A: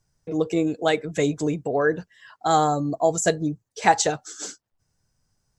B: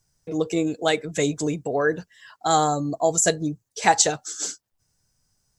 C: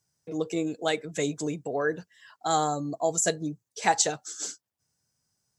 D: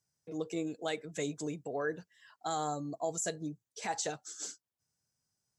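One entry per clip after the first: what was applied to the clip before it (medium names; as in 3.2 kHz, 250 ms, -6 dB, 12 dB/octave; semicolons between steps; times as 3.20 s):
treble shelf 3.8 kHz +9 dB; trim -1 dB
high-pass 110 Hz; trim -5.5 dB
peak limiter -17 dBFS, peak gain reduction 10 dB; trim -7 dB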